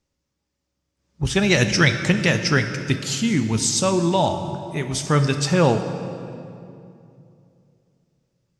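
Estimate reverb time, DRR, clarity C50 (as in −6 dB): 2.7 s, 7.5 dB, 8.5 dB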